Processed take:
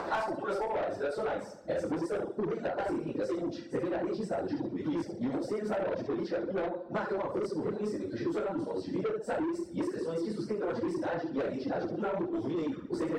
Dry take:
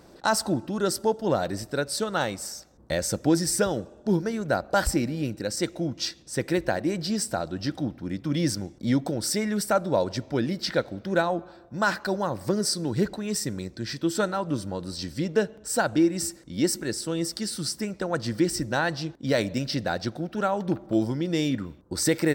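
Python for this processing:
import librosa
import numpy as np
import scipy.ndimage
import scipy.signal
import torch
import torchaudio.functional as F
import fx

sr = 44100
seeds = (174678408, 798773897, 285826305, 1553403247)

y = fx.spec_dilate(x, sr, span_ms=60)
y = fx.peak_eq(y, sr, hz=130.0, db=-3.0, octaves=1.8)
y = fx.echo_feedback(y, sr, ms=109, feedback_pct=53, wet_db=-4.5)
y = fx.dynamic_eq(y, sr, hz=230.0, q=3.2, threshold_db=-39.0, ratio=4.0, max_db=-5)
y = fx.filter_sweep_bandpass(y, sr, from_hz=1000.0, to_hz=360.0, start_s=0.26, end_s=3.03, q=1.1)
y = fx.doubler(y, sr, ms=38.0, db=-10.0)
y = fx.stretch_vocoder_free(y, sr, factor=0.59)
y = fx.dereverb_blind(y, sr, rt60_s=0.63)
y = 10.0 ** (-27.5 / 20.0) * np.tanh(y / 10.0 ** (-27.5 / 20.0))
y = fx.band_squash(y, sr, depth_pct=100)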